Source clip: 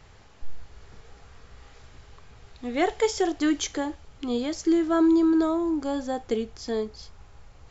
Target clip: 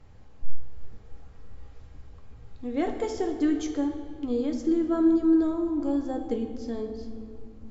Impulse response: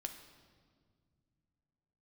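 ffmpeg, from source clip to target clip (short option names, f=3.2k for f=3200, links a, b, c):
-filter_complex "[0:a]tiltshelf=f=720:g=6.5[a];[1:a]atrim=start_sample=2205,asetrate=35280,aresample=44100[b];[a][b]afir=irnorm=-1:irlink=0,volume=-4dB"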